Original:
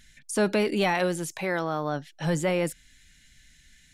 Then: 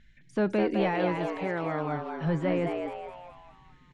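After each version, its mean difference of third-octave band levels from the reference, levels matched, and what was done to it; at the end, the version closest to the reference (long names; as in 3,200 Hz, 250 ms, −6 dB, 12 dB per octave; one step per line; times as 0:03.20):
9.5 dB: low-pass filter 2,600 Hz 12 dB per octave
low-shelf EQ 380 Hz +5.5 dB
on a send: echo with shifted repeats 208 ms, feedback 46%, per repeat +120 Hz, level −5 dB
on the sum: level −5.5 dB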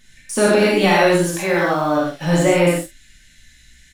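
6.0 dB: in parallel at −6.5 dB: centre clipping without the shift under −36 dBFS
on the sum: reverb whose tail is shaped and stops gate 160 ms flat, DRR −5 dB
flanger 0.67 Hz, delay 7.2 ms, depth 9.7 ms, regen +64%
double-tracking delay 47 ms −9 dB
level +5 dB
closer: second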